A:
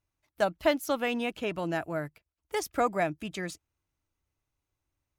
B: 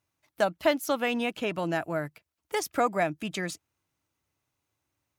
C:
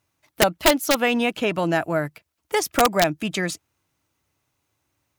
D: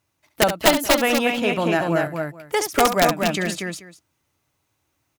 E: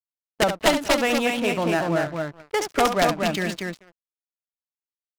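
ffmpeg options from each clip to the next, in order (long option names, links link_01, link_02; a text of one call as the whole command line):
ffmpeg -i in.wav -filter_complex "[0:a]highpass=120,equalizer=frequency=380:width_type=o:width=0.77:gain=-2,asplit=2[link_01][link_02];[link_02]acompressor=threshold=-37dB:ratio=6,volume=0dB[link_03];[link_01][link_03]amix=inputs=2:normalize=0" out.wav
ffmpeg -i in.wav -af "aeval=exprs='(mod(6.31*val(0)+1,2)-1)/6.31':channel_layout=same,volume=7.5dB" out.wav
ffmpeg -i in.wav -af "aecho=1:1:69|238|435:0.335|0.631|0.112" out.wav
ffmpeg -i in.wav -filter_complex "[0:a]asplit=2[link_01][link_02];[link_02]volume=23.5dB,asoftclip=hard,volume=-23.5dB,volume=-5dB[link_03];[link_01][link_03]amix=inputs=2:normalize=0,adynamicsmooth=sensitivity=5:basefreq=760,aeval=exprs='sgn(val(0))*max(abs(val(0))-0.0112,0)':channel_layout=same,volume=-3.5dB" out.wav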